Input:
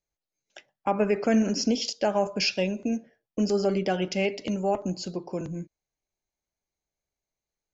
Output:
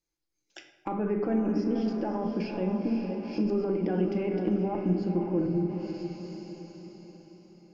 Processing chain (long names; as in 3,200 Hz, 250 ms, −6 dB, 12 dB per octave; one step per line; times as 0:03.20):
in parallel at −7 dB: asymmetric clip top −31.5 dBFS
on the sum: feedback delay with all-pass diffusion 502 ms, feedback 50%, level −9 dB
brickwall limiter −18 dBFS, peak gain reduction 8.5 dB
treble cut that deepens with the level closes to 1,300 Hz, closed at −27.5 dBFS
thirty-one-band graphic EQ 315 Hz +11 dB, 630 Hz −8 dB, 5,000 Hz +6 dB
rectangular room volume 420 cubic metres, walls mixed, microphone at 0.76 metres
level −3.5 dB